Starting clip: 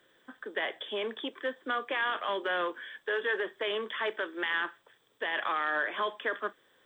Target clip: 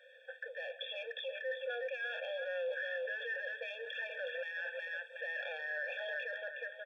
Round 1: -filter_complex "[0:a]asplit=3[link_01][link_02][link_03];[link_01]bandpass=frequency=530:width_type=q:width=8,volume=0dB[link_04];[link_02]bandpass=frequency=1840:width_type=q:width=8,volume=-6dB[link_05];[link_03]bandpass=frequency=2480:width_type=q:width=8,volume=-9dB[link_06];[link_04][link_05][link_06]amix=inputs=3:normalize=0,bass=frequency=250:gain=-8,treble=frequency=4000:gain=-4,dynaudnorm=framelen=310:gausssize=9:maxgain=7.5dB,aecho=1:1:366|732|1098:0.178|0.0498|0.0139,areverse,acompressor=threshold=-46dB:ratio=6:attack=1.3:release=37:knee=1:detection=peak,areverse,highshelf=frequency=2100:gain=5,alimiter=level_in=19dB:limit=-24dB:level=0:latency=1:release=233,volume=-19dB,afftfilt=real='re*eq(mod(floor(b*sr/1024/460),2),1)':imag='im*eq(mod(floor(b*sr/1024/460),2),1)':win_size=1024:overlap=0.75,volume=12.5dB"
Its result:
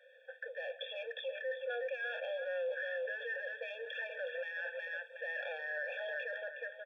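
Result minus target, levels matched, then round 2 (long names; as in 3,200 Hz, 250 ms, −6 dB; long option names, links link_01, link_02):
4,000 Hz band −2.5 dB
-filter_complex "[0:a]asplit=3[link_01][link_02][link_03];[link_01]bandpass=frequency=530:width_type=q:width=8,volume=0dB[link_04];[link_02]bandpass=frequency=1840:width_type=q:width=8,volume=-6dB[link_05];[link_03]bandpass=frequency=2480:width_type=q:width=8,volume=-9dB[link_06];[link_04][link_05][link_06]amix=inputs=3:normalize=0,bass=frequency=250:gain=-8,treble=frequency=4000:gain=-4,dynaudnorm=framelen=310:gausssize=9:maxgain=7.5dB,aecho=1:1:366|732|1098:0.178|0.0498|0.0139,areverse,acompressor=threshold=-46dB:ratio=6:attack=1.3:release=37:knee=1:detection=peak,areverse,highshelf=frequency=2100:gain=13,alimiter=level_in=19dB:limit=-24dB:level=0:latency=1:release=233,volume=-19dB,afftfilt=real='re*eq(mod(floor(b*sr/1024/460),2),1)':imag='im*eq(mod(floor(b*sr/1024/460),2),1)':win_size=1024:overlap=0.75,volume=12.5dB"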